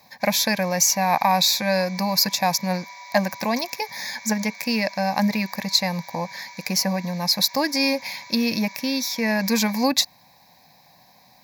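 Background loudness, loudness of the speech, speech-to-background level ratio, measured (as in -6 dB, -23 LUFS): -40.5 LUFS, -22.0 LUFS, 18.5 dB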